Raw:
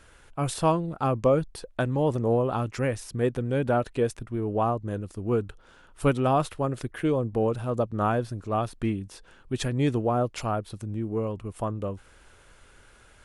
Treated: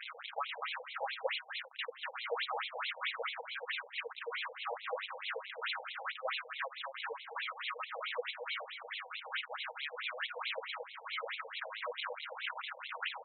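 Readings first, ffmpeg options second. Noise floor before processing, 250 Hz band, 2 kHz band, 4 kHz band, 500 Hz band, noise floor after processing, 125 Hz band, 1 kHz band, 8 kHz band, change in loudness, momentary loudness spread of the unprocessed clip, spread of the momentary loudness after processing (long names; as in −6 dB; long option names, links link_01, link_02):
−55 dBFS, below −40 dB, +2.0 dB, +4.0 dB, −17.5 dB, −54 dBFS, below −40 dB, −11.0 dB, below −35 dB, −12.0 dB, 9 LU, 5 LU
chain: -filter_complex "[0:a]aeval=exprs='val(0)+0.5*0.0133*sgn(val(0))':channel_layout=same,acrusher=samples=29:mix=1:aa=0.000001:lfo=1:lforange=46.4:lforate=1.9,equalizer=frequency=630:width_type=o:width=0.82:gain=-12,aecho=1:1:6.3:0.34,acompressor=threshold=-34dB:ratio=6,aemphasis=mode=production:type=75fm,asoftclip=type=hard:threshold=-22.5dB,asplit=2[link_01][link_02];[link_02]adelay=244,lowpass=frequency=4600:poles=1,volume=-7dB,asplit=2[link_03][link_04];[link_04]adelay=244,lowpass=frequency=4600:poles=1,volume=0.19,asplit=2[link_05][link_06];[link_06]adelay=244,lowpass=frequency=4600:poles=1,volume=0.19[link_07];[link_03][link_05][link_07]amix=inputs=3:normalize=0[link_08];[link_01][link_08]amix=inputs=2:normalize=0,afftfilt=real='re*between(b*sr/1024,640*pow(3000/640,0.5+0.5*sin(2*PI*4.6*pts/sr))/1.41,640*pow(3000/640,0.5+0.5*sin(2*PI*4.6*pts/sr))*1.41)':imag='im*between(b*sr/1024,640*pow(3000/640,0.5+0.5*sin(2*PI*4.6*pts/sr))/1.41,640*pow(3000/640,0.5+0.5*sin(2*PI*4.6*pts/sr))*1.41)':win_size=1024:overlap=0.75,volume=11dB"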